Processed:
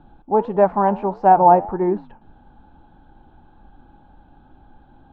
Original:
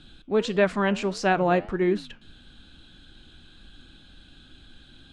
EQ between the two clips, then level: synth low-pass 860 Hz, resonance Q 10; +1.5 dB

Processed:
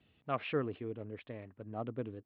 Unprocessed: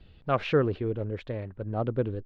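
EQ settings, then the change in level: speaker cabinet 170–3300 Hz, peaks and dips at 180 Hz -6 dB, 370 Hz -6 dB, 530 Hz -7 dB, 880 Hz -4 dB, 1500 Hz -6 dB; -5.5 dB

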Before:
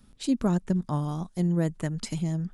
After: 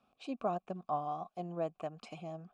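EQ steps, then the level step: vowel filter a; high shelf 9700 Hz -6.5 dB; +7.0 dB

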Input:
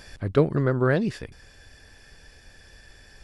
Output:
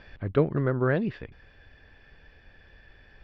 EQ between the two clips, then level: LPF 3300 Hz 24 dB/oct; -3.0 dB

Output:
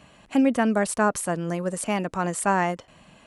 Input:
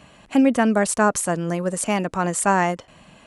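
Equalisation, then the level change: dynamic EQ 6800 Hz, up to -5 dB, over -41 dBFS, Q 2; -3.5 dB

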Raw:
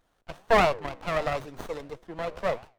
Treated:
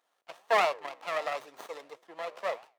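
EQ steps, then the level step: HPF 580 Hz 12 dB/oct; notch 1500 Hz, Q 13; -2.5 dB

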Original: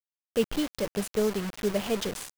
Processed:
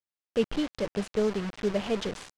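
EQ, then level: air absorption 92 m; 0.0 dB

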